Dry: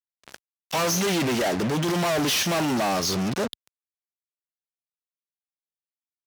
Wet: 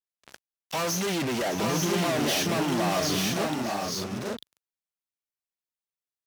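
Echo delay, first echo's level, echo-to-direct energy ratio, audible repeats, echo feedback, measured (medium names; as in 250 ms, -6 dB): 617 ms, -13.5 dB, -1.5 dB, 4, no regular repeats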